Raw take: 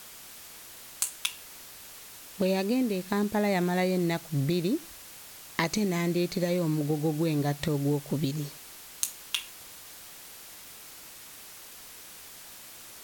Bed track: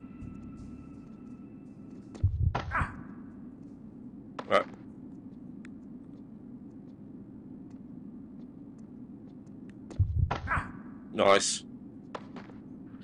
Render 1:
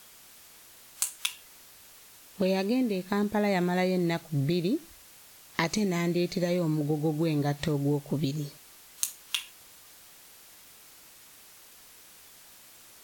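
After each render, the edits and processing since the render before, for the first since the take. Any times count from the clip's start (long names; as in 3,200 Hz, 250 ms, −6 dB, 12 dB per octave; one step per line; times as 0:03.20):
noise reduction from a noise print 6 dB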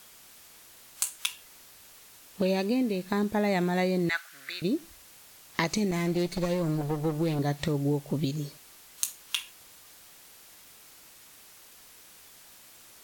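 0:04.09–0:04.62: high-pass with resonance 1,500 Hz, resonance Q 5.2
0:05.91–0:07.39: lower of the sound and its delayed copy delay 5.9 ms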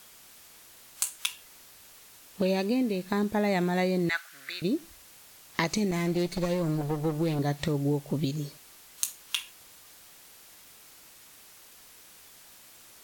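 no processing that can be heard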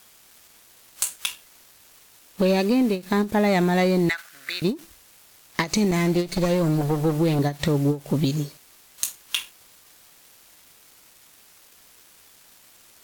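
leveller curve on the samples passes 2
every ending faded ahead of time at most 240 dB per second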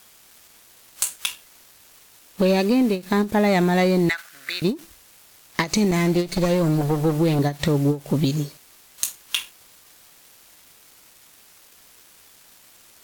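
level +1.5 dB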